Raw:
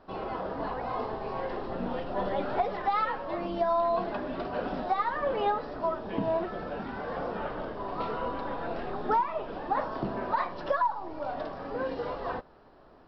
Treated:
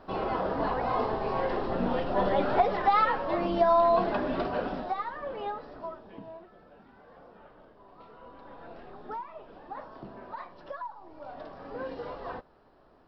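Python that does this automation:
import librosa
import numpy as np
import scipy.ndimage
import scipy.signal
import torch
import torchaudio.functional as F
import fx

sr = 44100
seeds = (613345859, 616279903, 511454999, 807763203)

y = fx.gain(x, sr, db=fx.line((4.4, 4.5), (5.16, -7.5), (5.77, -7.5), (6.45, -19.0), (8.09, -19.0), (8.63, -12.0), (10.92, -12.0), (11.77, -4.5)))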